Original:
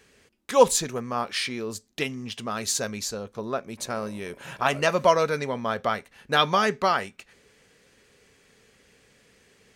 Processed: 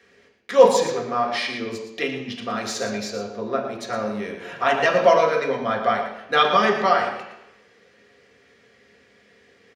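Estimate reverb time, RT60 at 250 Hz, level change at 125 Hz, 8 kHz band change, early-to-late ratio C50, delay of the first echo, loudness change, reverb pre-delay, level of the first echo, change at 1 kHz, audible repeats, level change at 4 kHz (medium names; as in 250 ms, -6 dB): 0.85 s, 0.80 s, -1.5 dB, -6.0 dB, 5.0 dB, 115 ms, +4.0 dB, 3 ms, -9.5 dB, +4.5 dB, 1, +1.0 dB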